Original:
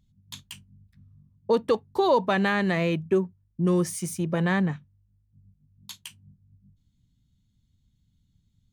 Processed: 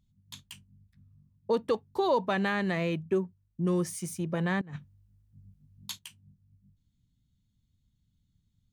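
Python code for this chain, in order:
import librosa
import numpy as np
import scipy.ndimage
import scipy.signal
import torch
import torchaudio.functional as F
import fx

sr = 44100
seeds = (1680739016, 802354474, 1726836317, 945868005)

y = fx.over_compress(x, sr, threshold_db=-37.0, ratio=-1.0, at=(4.61, 5.99))
y = y * librosa.db_to_amplitude(-5.0)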